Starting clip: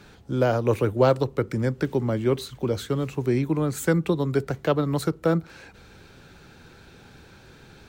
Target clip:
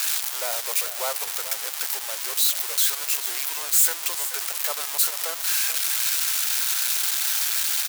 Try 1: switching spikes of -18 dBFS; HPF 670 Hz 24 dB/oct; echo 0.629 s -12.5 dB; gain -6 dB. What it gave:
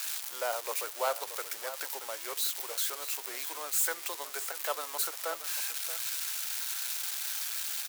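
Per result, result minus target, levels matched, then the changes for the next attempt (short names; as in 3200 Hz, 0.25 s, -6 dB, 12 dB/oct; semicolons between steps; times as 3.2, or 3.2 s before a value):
echo 0.194 s late; switching spikes: distortion -11 dB
change: echo 0.435 s -12.5 dB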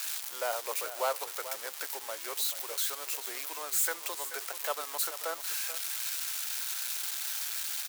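switching spikes: distortion -11 dB
change: switching spikes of -6.5 dBFS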